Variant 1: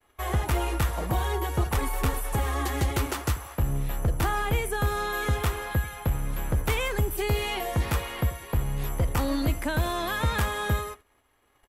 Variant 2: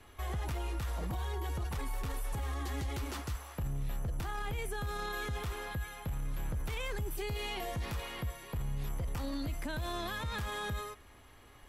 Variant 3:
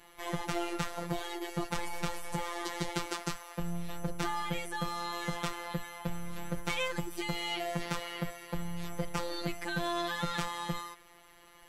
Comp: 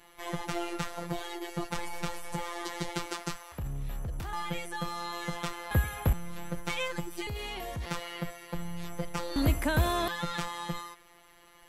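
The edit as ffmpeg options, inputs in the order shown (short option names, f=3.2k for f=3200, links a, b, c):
-filter_complex "[1:a]asplit=2[a][b];[0:a]asplit=2[c][d];[2:a]asplit=5[e][f][g][h][i];[e]atrim=end=3.522[j];[a]atrim=start=3.518:end=4.332[k];[f]atrim=start=4.328:end=5.712[l];[c]atrim=start=5.708:end=6.132[m];[g]atrim=start=6.128:end=7.272[n];[b]atrim=start=7.268:end=7.862[o];[h]atrim=start=7.858:end=9.362[p];[d]atrim=start=9.358:end=10.082[q];[i]atrim=start=10.078[r];[j][k]acrossfade=d=0.004:c1=hsin:c2=hsin[s];[s][l]acrossfade=d=0.004:c1=hsin:c2=hsin[t];[t][m]acrossfade=d=0.004:c1=hsin:c2=hsin[u];[u][n]acrossfade=d=0.004:c1=hsin:c2=hsin[v];[v][o]acrossfade=d=0.004:c1=hsin:c2=hsin[w];[w][p]acrossfade=d=0.004:c1=hsin:c2=hsin[x];[x][q]acrossfade=d=0.004:c1=hsin:c2=hsin[y];[y][r]acrossfade=d=0.004:c1=hsin:c2=hsin"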